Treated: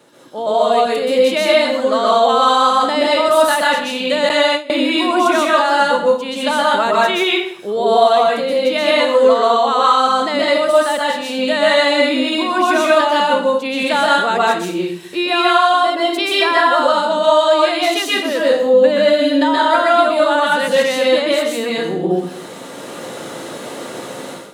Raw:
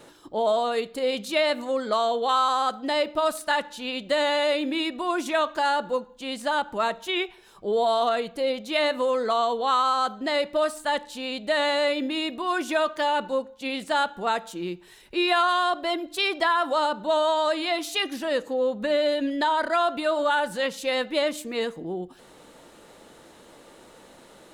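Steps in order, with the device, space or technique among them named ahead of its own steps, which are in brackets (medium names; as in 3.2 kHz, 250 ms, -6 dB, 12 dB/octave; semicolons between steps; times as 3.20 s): far laptop microphone (reverberation RT60 0.60 s, pre-delay 120 ms, DRR -5 dB; high-pass 110 Hz 24 dB/octave; level rider gain up to 16 dB); 4.29–4.71 s: gate with hold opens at -4 dBFS; trim -1 dB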